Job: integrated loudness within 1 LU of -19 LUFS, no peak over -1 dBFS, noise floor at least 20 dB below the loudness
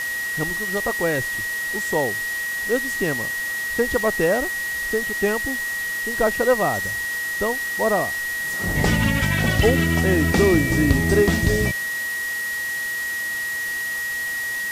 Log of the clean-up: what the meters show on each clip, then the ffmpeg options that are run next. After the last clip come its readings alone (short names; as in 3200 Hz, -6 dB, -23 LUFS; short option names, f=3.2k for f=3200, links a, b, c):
steady tone 1900 Hz; tone level -24 dBFS; noise floor -27 dBFS; noise floor target -42 dBFS; loudness -21.5 LUFS; peak -4.5 dBFS; loudness target -19.0 LUFS
-> -af "bandreject=f=1.9k:w=30"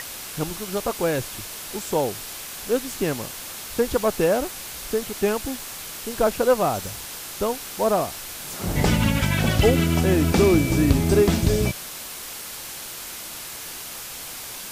steady tone none; noise floor -36 dBFS; noise floor target -44 dBFS
-> -af "afftdn=nr=8:nf=-36"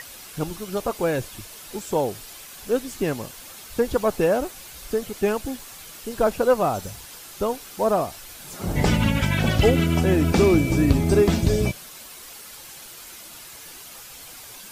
noise floor -42 dBFS; noise floor target -43 dBFS
-> -af "afftdn=nr=6:nf=-42"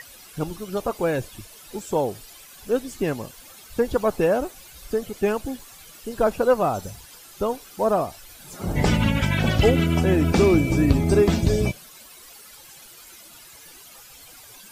noise floor -46 dBFS; loudness -23.0 LUFS; peak -5.5 dBFS; loudness target -19.0 LUFS
-> -af "volume=4dB"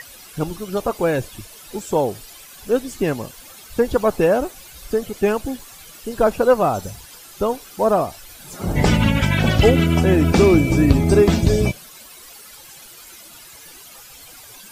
loudness -19.0 LUFS; peak -1.5 dBFS; noise floor -42 dBFS